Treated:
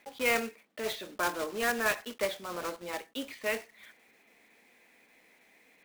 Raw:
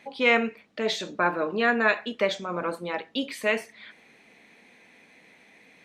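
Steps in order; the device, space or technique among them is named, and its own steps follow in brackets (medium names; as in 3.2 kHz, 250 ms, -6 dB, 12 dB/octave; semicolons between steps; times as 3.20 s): early digital voice recorder (band-pass 240–3800 Hz; block-companded coder 3-bit); trim -7 dB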